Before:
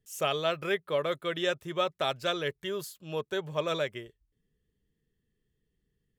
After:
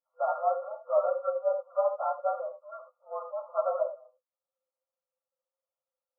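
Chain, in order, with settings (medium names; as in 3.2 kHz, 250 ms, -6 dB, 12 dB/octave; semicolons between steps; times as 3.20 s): frequency axis rescaled in octaves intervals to 108%; gated-style reverb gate 100 ms rising, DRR 6 dB; FFT band-pass 500–1400 Hz; trim +5.5 dB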